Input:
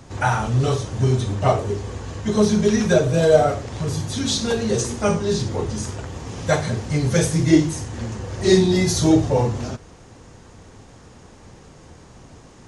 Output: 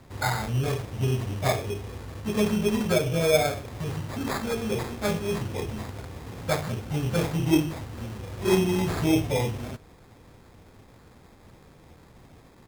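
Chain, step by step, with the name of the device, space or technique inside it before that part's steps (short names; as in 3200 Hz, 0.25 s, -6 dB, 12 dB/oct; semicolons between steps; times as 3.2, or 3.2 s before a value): crushed at another speed (playback speed 0.8×; sample-and-hold 19×; playback speed 1.25×); gain -7 dB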